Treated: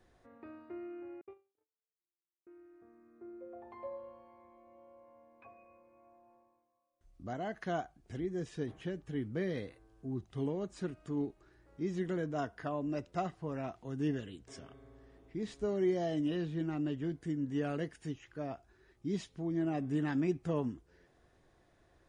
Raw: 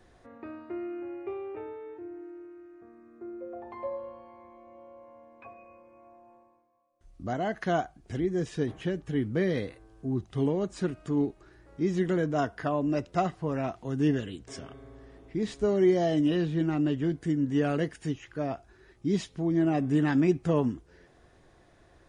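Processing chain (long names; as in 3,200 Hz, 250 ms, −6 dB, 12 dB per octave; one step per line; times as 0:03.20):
0:01.21–0:02.47: noise gate −33 dBFS, range −59 dB
level −8.5 dB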